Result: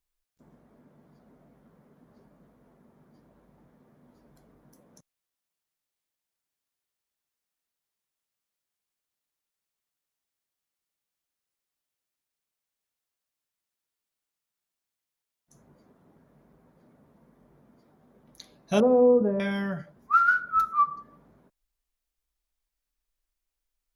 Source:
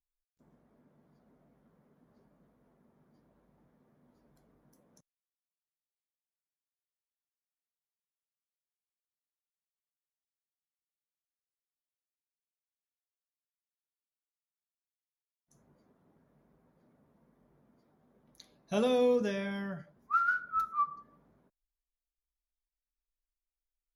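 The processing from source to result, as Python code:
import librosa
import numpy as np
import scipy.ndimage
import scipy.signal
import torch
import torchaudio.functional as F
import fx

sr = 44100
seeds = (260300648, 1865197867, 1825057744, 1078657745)

y = fx.lowpass(x, sr, hz=1000.0, slope=24, at=(18.8, 19.4))
y = y * librosa.db_to_amplitude(8.0)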